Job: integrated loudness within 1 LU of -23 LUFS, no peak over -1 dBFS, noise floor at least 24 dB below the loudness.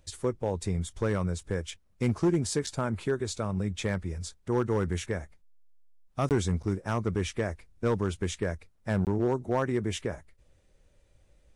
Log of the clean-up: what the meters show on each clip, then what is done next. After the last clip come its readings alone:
clipped samples 0.5%; clipping level -18.5 dBFS; dropouts 2; longest dropout 18 ms; loudness -30.5 LUFS; peak level -18.5 dBFS; loudness target -23.0 LUFS
-> clip repair -18.5 dBFS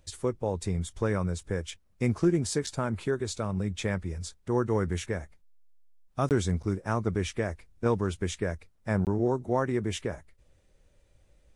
clipped samples 0.0%; dropouts 2; longest dropout 18 ms
-> interpolate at 6.29/9.05 s, 18 ms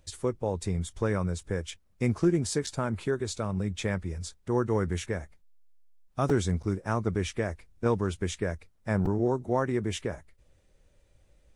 dropouts 0; loudness -30.5 LUFS; peak level -12.5 dBFS; loudness target -23.0 LUFS
-> trim +7.5 dB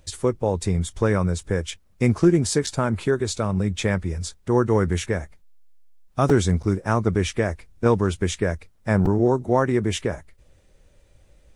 loudness -23.0 LUFS; peak level -5.0 dBFS; noise floor -58 dBFS

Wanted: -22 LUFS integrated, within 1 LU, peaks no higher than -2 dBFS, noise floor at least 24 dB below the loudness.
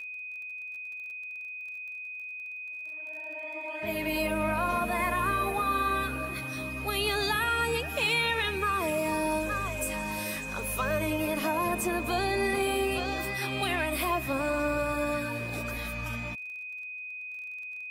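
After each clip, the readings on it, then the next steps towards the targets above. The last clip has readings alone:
tick rate 26 per s; steady tone 2.5 kHz; tone level -37 dBFS; loudness -30.5 LUFS; peak level -16.0 dBFS; loudness target -22.0 LUFS
-> de-click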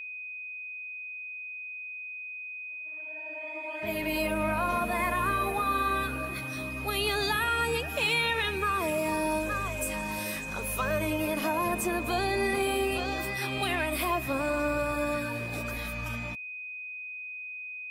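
tick rate 0 per s; steady tone 2.5 kHz; tone level -37 dBFS
-> band-stop 2.5 kHz, Q 30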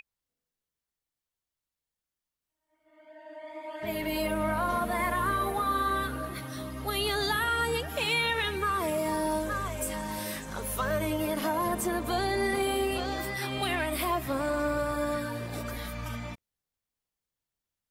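steady tone not found; loudness -30.0 LUFS; peak level -16.5 dBFS; loudness target -22.0 LUFS
-> trim +8 dB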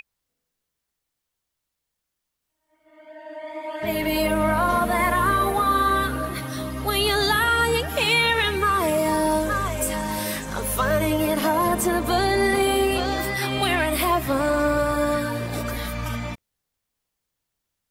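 loudness -22.0 LUFS; peak level -8.5 dBFS; noise floor -82 dBFS

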